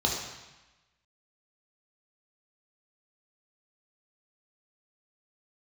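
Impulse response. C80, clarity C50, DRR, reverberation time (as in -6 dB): 5.0 dB, 3.0 dB, -2.0 dB, 1.1 s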